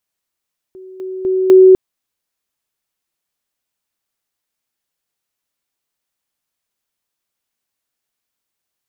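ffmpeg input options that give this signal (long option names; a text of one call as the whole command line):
ffmpeg -f lavfi -i "aevalsrc='pow(10,(-32.5+10*floor(t/0.25))/20)*sin(2*PI*375*t)':duration=1:sample_rate=44100" out.wav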